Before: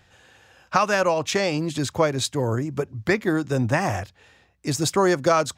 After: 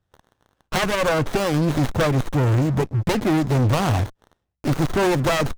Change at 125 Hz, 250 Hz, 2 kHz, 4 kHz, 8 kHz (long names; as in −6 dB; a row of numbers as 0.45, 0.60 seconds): +7.5, +3.5, 0.0, +0.5, −4.0 decibels